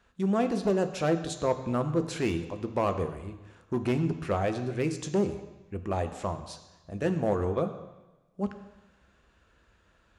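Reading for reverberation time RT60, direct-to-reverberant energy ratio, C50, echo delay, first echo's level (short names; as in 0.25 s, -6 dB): 1.1 s, 8.0 dB, 10.5 dB, none, none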